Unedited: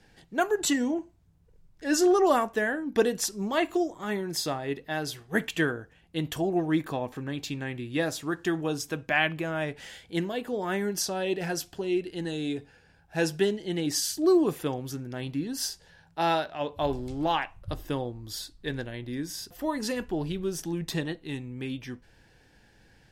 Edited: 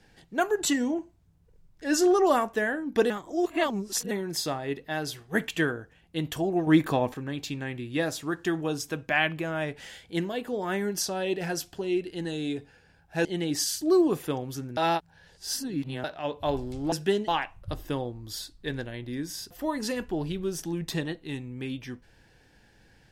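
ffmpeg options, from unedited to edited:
-filter_complex "[0:a]asplit=10[s0][s1][s2][s3][s4][s5][s6][s7][s8][s9];[s0]atrim=end=3.102[s10];[s1]atrim=start=3.098:end=4.112,asetpts=PTS-STARTPTS,areverse[s11];[s2]atrim=start=4.108:end=6.672[s12];[s3]atrim=start=6.668:end=7.142,asetpts=PTS-STARTPTS,volume=2[s13];[s4]atrim=start=7.138:end=13.252[s14];[s5]atrim=start=13.608:end=15.132[s15];[s6]atrim=start=15.128:end=16.402,asetpts=PTS-STARTPTS,areverse[s16];[s7]atrim=start=16.398:end=17.282[s17];[s8]atrim=start=13.248:end=13.612[s18];[s9]atrim=start=17.278[s19];[s10][s11]acrossfade=d=0.004:c1=hsin:c2=hsin[s20];[s20][s12]acrossfade=d=0.004:c1=hsin:c2=hsin[s21];[s21][s13]acrossfade=d=0.004:c1=hsin:c2=hsin[s22];[s22][s14]acrossfade=d=0.004:c1=hsin:c2=hsin[s23];[s23][s15]acrossfade=d=0.004:c1=hsin:c2=hsin[s24];[s24][s16]acrossfade=d=0.004:c1=hsin:c2=hsin[s25];[s25][s17]acrossfade=d=0.004:c1=hsin:c2=hsin[s26];[s26][s18]acrossfade=d=0.004:c1=hsin:c2=hsin[s27];[s27][s19]acrossfade=d=0.004:c1=hsin:c2=hsin"

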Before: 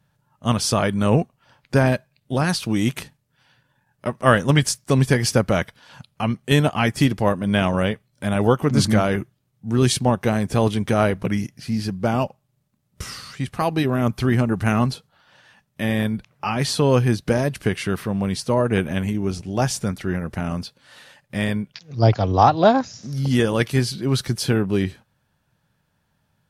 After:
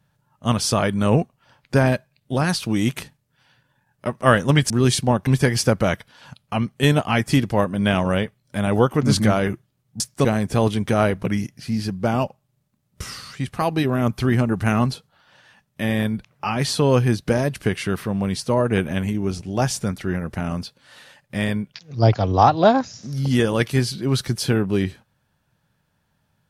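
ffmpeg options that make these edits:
-filter_complex "[0:a]asplit=5[s0][s1][s2][s3][s4];[s0]atrim=end=4.702[s5];[s1]atrim=start=9.678:end=10.252[s6];[s2]atrim=start=4.948:end=9.682[s7];[s3]atrim=start=4.698:end=4.952[s8];[s4]atrim=start=10.248[s9];[s5][s6]acrossfade=d=0.004:c1=hsin:c2=hsin[s10];[s10][s7]acrossfade=d=0.004:c1=hsin:c2=hsin[s11];[s11][s8]acrossfade=d=0.004:c1=hsin:c2=hsin[s12];[s12][s9]acrossfade=d=0.004:c1=hsin:c2=hsin"

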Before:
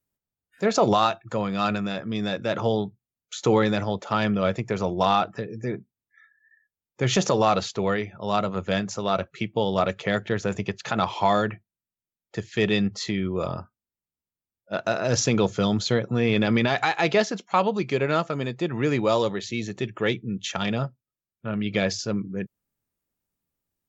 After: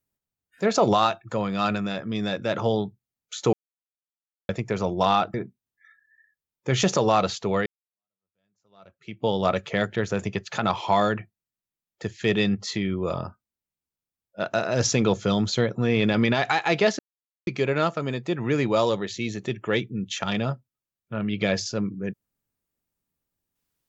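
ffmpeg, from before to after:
-filter_complex "[0:a]asplit=7[s0][s1][s2][s3][s4][s5][s6];[s0]atrim=end=3.53,asetpts=PTS-STARTPTS,afade=t=out:st=3.526:d=0.004:c=hsin[s7];[s1]atrim=start=3.53:end=4.49,asetpts=PTS-STARTPTS,volume=0[s8];[s2]atrim=start=4.49:end=5.342,asetpts=PTS-STARTPTS,afade=t=in:d=0.004:c=hsin[s9];[s3]atrim=start=5.668:end=7.99,asetpts=PTS-STARTPTS,afade=t=out:st=2.318:d=0.004:c=hsin[s10];[s4]atrim=start=7.99:end=17.32,asetpts=PTS-STARTPTS,afade=t=in:d=1.59:c=exp,afade=t=out:st=9.326:d=0.004:c=hsin[s11];[s5]atrim=start=17.32:end=17.8,asetpts=PTS-STARTPTS,volume=0[s12];[s6]atrim=start=17.8,asetpts=PTS-STARTPTS,afade=t=in:d=0.004:c=hsin[s13];[s7][s8][s9]concat=n=3:v=0:a=1[s14];[s10][s11][s12][s13]concat=n=4:v=0:a=1[s15];[s14][s15]acrossfade=d=0.004:c1=hsin:c2=hsin"

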